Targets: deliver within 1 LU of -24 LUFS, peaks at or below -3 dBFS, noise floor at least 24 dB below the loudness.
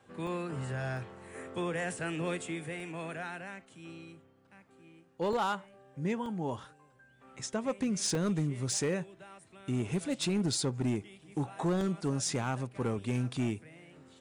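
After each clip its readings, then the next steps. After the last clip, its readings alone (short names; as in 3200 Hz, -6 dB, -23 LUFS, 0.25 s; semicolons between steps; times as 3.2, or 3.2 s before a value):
clipped 1.1%; flat tops at -25.0 dBFS; dropouts 7; longest dropout 1.4 ms; loudness -34.0 LUFS; peak -25.0 dBFS; loudness target -24.0 LUFS
-> clip repair -25 dBFS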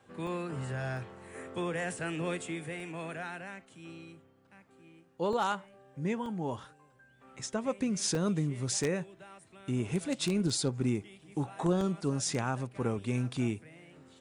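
clipped 0.0%; dropouts 7; longest dropout 1.4 ms
-> interpolate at 0.27/0.97/2.8/5.33/6.26/8.15/11.81, 1.4 ms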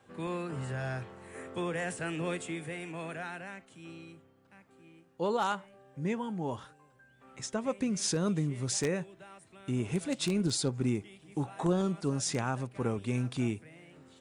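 dropouts 0; loudness -33.5 LUFS; peak -16.0 dBFS; loudness target -24.0 LUFS
-> gain +9.5 dB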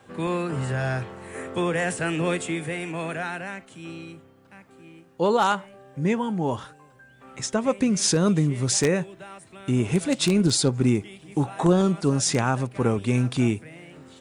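loudness -24.0 LUFS; peak -6.5 dBFS; noise floor -54 dBFS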